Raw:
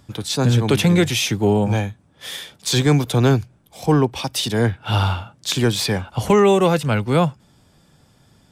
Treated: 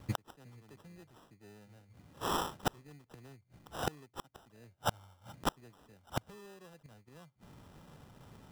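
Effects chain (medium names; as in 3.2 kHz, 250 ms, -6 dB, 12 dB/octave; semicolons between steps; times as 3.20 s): sample-and-hold 20×; inverted gate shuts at -18 dBFS, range -38 dB; trim -1.5 dB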